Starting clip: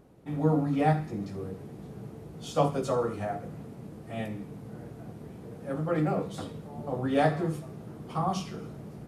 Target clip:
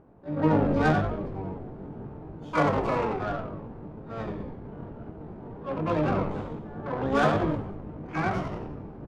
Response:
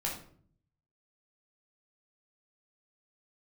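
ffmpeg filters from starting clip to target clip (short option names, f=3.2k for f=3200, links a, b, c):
-filter_complex "[0:a]asplit=8[a][b][c][d][e][f][g][h];[b]adelay=87,afreqshift=-51,volume=-4.5dB[i];[c]adelay=174,afreqshift=-102,volume=-10dB[j];[d]adelay=261,afreqshift=-153,volume=-15.5dB[k];[e]adelay=348,afreqshift=-204,volume=-21dB[l];[f]adelay=435,afreqshift=-255,volume=-26.6dB[m];[g]adelay=522,afreqshift=-306,volume=-32.1dB[n];[h]adelay=609,afreqshift=-357,volume=-37.6dB[o];[a][i][j][k][l][m][n][o]amix=inputs=8:normalize=0,asplit=2[p][q];[q]asetrate=88200,aresample=44100,atempo=0.5,volume=-2dB[r];[p][r]amix=inputs=2:normalize=0,adynamicsmooth=sensitivity=2:basefreq=1.4k,volume=-1dB"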